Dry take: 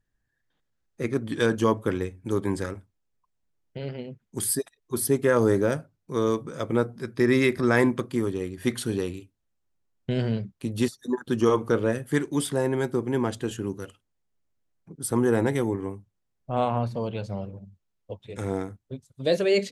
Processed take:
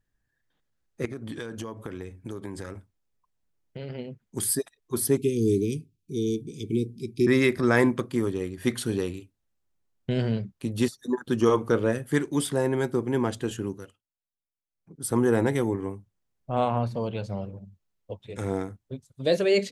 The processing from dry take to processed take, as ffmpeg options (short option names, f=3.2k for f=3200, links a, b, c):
-filter_complex "[0:a]asettb=1/sr,asplit=3[a][b][c];[a]atrim=end=1.054[d];[b]atrim=start=1.05:end=3.9,asetpts=PTS-STARTPTS,afade=t=in:d=0.004:c=qsin,afade=t=out:st=2.846:d=0.004:c=qsin,acompressor=threshold=-31dB:ratio=16:attack=3.2:release=140:knee=1:detection=peak[e];[c]atrim=start=3.896[f];[d][e]acrossfade=d=0.004:c1=hsin:c2=qsin[g];[g][f]acrossfade=d=0.004:c1=qsin:c2=hsin,asettb=1/sr,asplit=3[h][i][j];[h]atrim=end=5.174[k];[i]atrim=start=5.17:end=7.27,asetpts=PTS-STARTPTS,afade=t=in:d=0.004:c=qsin,afade=t=out:st=2.096:d=0.004:c=qsin,asuperstop=centerf=1000:order=20:qfactor=0.53[l];[j]atrim=start=7.266[m];[k][l]acrossfade=d=0.004:c1=hsin:c2=qsin[n];[n][m]acrossfade=d=0.004:c1=qsin:c2=hsin,asplit=3[o][p][q];[o]atrim=end=14.02,asetpts=PTS-STARTPTS,afade=t=out:st=13.62:d=0.4:silence=0.1[r];[p]atrim=start=14.02:end=14.7,asetpts=PTS-STARTPTS,volume=-20dB[s];[q]atrim=start=14.7,asetpts=PTS-STARTPTS,afade=t=in:d=0.4:silence=0.1[t];[r][s][t]concat=n=3:v=0:a=1"